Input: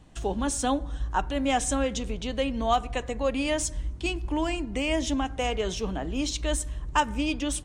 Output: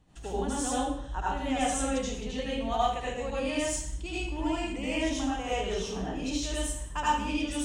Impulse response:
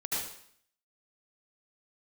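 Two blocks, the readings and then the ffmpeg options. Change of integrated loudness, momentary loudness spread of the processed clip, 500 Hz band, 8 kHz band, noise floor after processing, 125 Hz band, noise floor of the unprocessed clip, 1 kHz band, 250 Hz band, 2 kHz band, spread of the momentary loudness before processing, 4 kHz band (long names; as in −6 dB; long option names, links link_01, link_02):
−3.0 dB, 5 LU, −3.0 dB, −2.5 dB, −39 dBFS, −4.0 dB, −39 dBFS, −2.0 dB, −2.5 dB, −3.0 dB, 6 LU, −3.0 dB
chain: -filter_complex "[1:a]atrim=start_sample=2205,afade=type=out:start_time=0.44:duration=0.01,atrim=end_sample=19845[link_01];[0:a][link_01]afir=irnorm=-1:irlink=0,volume=-8dB"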